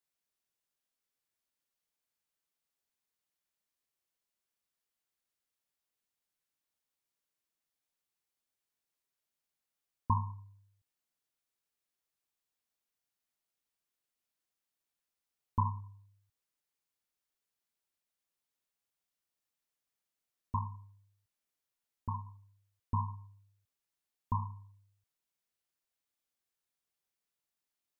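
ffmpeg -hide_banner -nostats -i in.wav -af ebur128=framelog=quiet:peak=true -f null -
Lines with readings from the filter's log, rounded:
Integrated loudness:
  I:         -38.2 LUFS
  Threshold: -50.2 LUFS
Loudness range:
  LRA:         4.9 LU
  Threshold: -64.6 LUFS
  LRA low:   -47.8 LUFS
  LRA high:  -42.9 LUFS
True peak:
  Peak:      -16.2 dBFS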